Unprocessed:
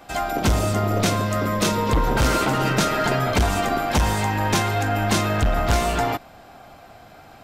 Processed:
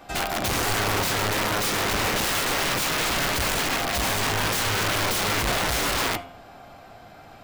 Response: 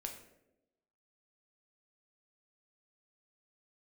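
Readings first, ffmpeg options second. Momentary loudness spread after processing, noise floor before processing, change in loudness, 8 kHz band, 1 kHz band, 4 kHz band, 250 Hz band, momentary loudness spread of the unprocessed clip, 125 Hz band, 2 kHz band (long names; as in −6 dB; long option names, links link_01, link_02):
1 LU, −46 dBFS, −2.0 dB, +3.0 dB, −4.0 dB, +3.5 dB, −7.5 dB, 3 LU, −9.0 dB, +1.5 dB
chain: -filter_complex "[0:a]aeval=exprs='(mod(8.41*val(0)+1,2)-1)/8.41':channel_layout=same,bandreject=frequency=87.38:width_type=h:width=4,bandreject=frequency=174.76:width_type=h:width=4,bandreject=frequency=262.14:width_type=h:width=4,bandreject=frequency=349.52:width_type=h:width=4,bandreject=frequency=436.9:width_type=h:width=4,bandreject=frequency=524.28:width_type=h:width=4,bandreject=frequency=611.66:width_type=h:width=4,bandreject=frequency=699.04:width_type=h:width=4,bandreject=frequency=786.42:width_type=h:width=4,bandreject=frequency=873.8:width_type=h:width=4,bandreject=frequency=961.18:width_type=h:width=4,bandreject=frequency=1048.56:width_type=h:width=4,bandreject=frequency=1135.94:width_type=h:width=4,bandreject=frequency=1223.32:width_type=h:width=4,bandreject=frequency=1310.7:width_type=h:width=4,bandreject=frequency=1398.08:width_type=h:width=4,bandreject=frequency=1485.46:width_type=h:width=4,bandreject=frequency=1572.84:width_type=h:width=4,bandreject=frequency=1660.22:width_type=h:width=4,bandreject=frequency=1747.6:width_type=h:width=4,bandreject=frequency=1834.98:width_type=h:width=4,bandreject=frequency=1922.36:width_type=h:width=4,bandreject=frequency=2009.74:width_type=h:width=4,bandreject=frequency=2097.12:width_type=h:width=4,bandreject=frequency=2184.5:width_type=h:width=4,bandreject=frequency=2271.88:width_type=h:width=4,bandreject=frequency=2359.26:width_type=h:width=4,bandreject=frequency=2446.64:width_type=h:width=4,bandreject=frequency=2534.02:width_type=h:width=4,bandreject=frequency=2621.4:width_type=h:width=4,bandreject=frequency=2708.78:width_type=h:width=4,bandreject=frequency=2796.16:width_type=h:width=4,bandreject=frequency=2883.54:width_type=h:width=4,bandreject=frequency=2970.92:width_type=h:width=4,bandreject=frequency=3058.3:width_type=h:width=4,bandreject=frequency=3145.68:width_type=h:width=4,bandreject=frequency=3233.06:width_type=h:width=4,bandreject=frequency=3320.44:width_type=h:width=4,bandreject=frequency=3407.82:width_type=h:width=4,bandreject=frequency=3495.2:width_type=h:width=4,asplit=2[link_01][link_02];[1:a]atrim=start_sample=2205,afade=type=out:start_time=0.15:duration=0.01,atrim=end_sample=7056,lowpass=7400[link_03];[link_02][link_03]afir=irnorm=-1:irlink=0,volume=-4.5dB[link_04];[link_01][link_04]amix=inputs=2:normalize=0,volume=-3dB"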